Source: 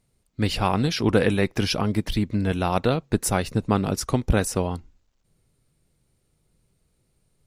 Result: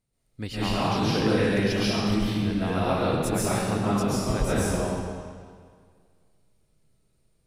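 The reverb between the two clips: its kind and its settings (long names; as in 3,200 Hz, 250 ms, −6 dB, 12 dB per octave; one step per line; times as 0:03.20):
comb and all-pass reverb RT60 1.9 s, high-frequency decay 0.9×, pre-delay 95 ms, DRR −9.5 dB
level −11 dB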